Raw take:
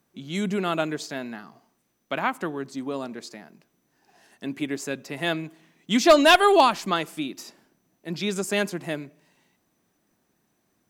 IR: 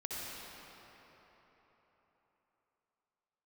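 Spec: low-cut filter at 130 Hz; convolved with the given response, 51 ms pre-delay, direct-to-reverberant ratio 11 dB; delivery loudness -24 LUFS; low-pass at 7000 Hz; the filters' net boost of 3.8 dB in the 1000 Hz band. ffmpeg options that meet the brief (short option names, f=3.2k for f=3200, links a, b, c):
-filter_complex "[0:a]highpass=130,lowpass=7k,equalizer=f=1k:t=o:g=5,asplit=2[a][b];[1:a]atrim=start_sample=2205,adelay=51[c];[b][c]afir=irnorm=-1:irlink=0,volume=-13.5dB[d];[a][d]amix=inputs=2:normalize=0,volume=-2dB"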